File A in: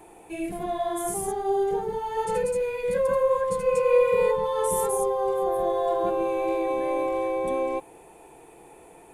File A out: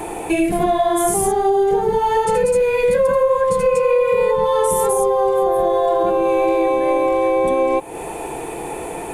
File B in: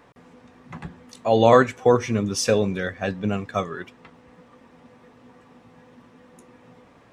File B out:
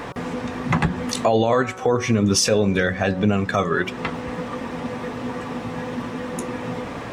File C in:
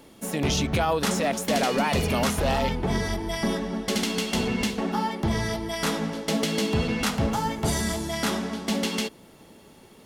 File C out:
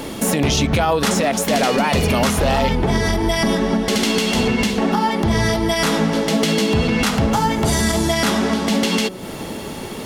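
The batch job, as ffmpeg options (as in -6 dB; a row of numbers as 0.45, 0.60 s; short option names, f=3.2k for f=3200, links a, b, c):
-af "highshelf=f=9.3k:g=-2.5,bandreject=f=186.7:t=h:w=4,bandreject=f=373.4:t=h:w=4,bandreject=f=560.1:t=h:w=4,bandreject=f=746.8:t=h:w=4,bandreject=f=933.5:t=h:w=4,bandreject=f=1.1202k:t=h:w=4,bandreject=f=1.3069k:t=h:w=4,bandreject=f=1.4936k:t=h:w=4,acompressor=threshold=-38dB:ratio=4,alimiter=level_in=29dB:limit=-1dB:release=50:level=0:latency=1,volume=-7dB"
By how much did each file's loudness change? +8.5, -1.5, +8.0 LU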